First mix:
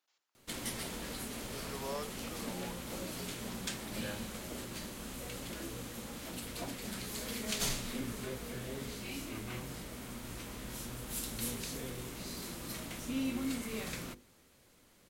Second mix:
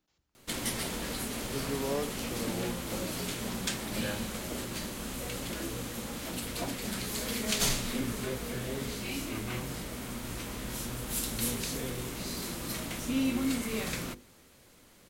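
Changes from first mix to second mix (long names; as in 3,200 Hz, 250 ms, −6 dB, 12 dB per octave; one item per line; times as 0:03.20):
speech: remove high-pass filter 750 Hz 12 dB per octave
background +6.0 dB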